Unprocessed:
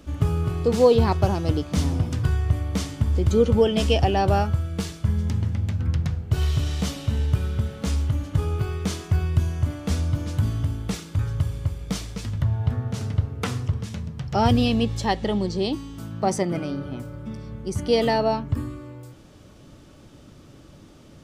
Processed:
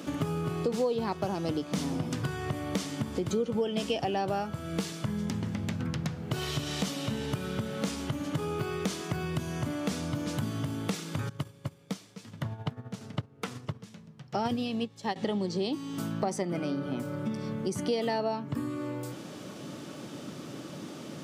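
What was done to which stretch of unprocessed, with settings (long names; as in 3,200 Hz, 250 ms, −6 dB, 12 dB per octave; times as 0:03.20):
0:11.29–0:15.16: expander for the loud parts 2.5 to 1, over −30 dBFS
whole clip: high-pass filter 150 Hz 24 dB per octave; downward compressor 4 to 1, threshold −39 dBFS; level +8.5 dB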